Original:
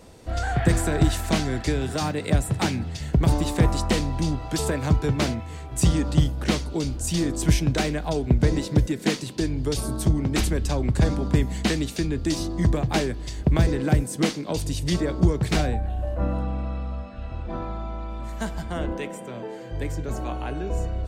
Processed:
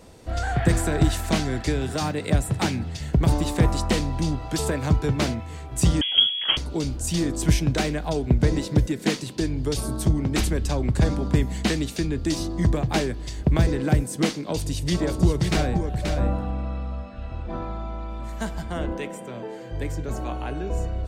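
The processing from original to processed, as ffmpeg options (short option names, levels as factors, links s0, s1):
-filter_complex "[0:a]asettb=1/sr,asplit=3[s0][s1][s2];[s0]atrim=end=6.014[s3];[s1]atrim=start=6.01:end=6.57,asetpts=PTS-STARTPTS,afade=t=in:d=0.004:c=qsin,afade=t=out:st=0.556:d=0.004:c=qsin,lowpass=f=2900:t=q:w=0.5098,lowpass=f=2900:t=q:w=0.6013,lowpass=f=2900:t=q:w=0.9,lowpass=f=2900:t=q:w=2.563,afreqshift=-3400[s4];[s2]atrim=start=6.566[s5];[s3][s4]acrossfade=d=0.004:c1=hsin:c2=qsin[s6];[s6][s5]acrossfade=d=0.004:c1=qsin:c2=hsin,asettb=1/sr,asplit=3[s7][s8][s9];[s7]atrim=end=14.434[s10];[s8]atrim=start=14.43:end=16.51,asetpts=PTS-STARTPTS,afade=t=in:d=0.004:c=qsin,afade=t=out:st=2.076:d=0.004:c=qsin,aecho=1:1:530:0.501,atrim=end_sample=91728[s11];[s9]atrim=start=16.506[s12];[s10][s11]acrossfade=d=0.004:c1=hsin:c2=qsin[s13];[s13][s12]acrossfade=d=0.004:c1=qsin:c2=hsin"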